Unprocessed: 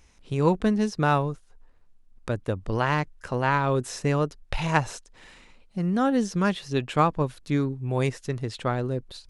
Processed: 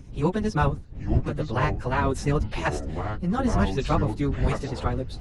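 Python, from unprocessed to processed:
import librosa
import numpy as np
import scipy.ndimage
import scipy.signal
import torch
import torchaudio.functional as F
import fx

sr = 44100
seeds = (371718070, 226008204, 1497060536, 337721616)

y = fx.dmg_wind(x, sr, seeds[0], corner_hz=94.0, level_db=-29.0)
y = fx.stretch_vocoder_free(y, sr, factor=0.56)
y = fx.echo_pitch(y, sr, ms=761, semitones=-6, count=3, db_per_echo=-6.0)
y = y * 10.0 ** (2.0 / 20.0)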